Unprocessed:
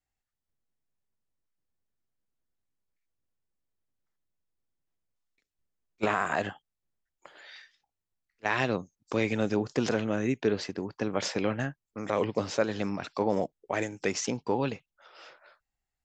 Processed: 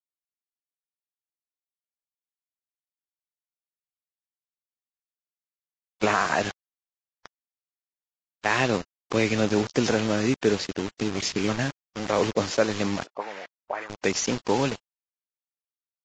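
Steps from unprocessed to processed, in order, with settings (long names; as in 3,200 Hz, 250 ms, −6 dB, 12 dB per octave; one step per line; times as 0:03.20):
0:10.90–0:11.49: gain on a spectral selection 440–1,800 Hz −15 dB
bit reduction 6 bits
0:13.04–0:13.90: envelope filter 360–1,900 Hz, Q 2.1, up, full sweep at −23 dBFS
level +4.5 dB
Ogg Vorbis 32 kbit/s 16,000 Hz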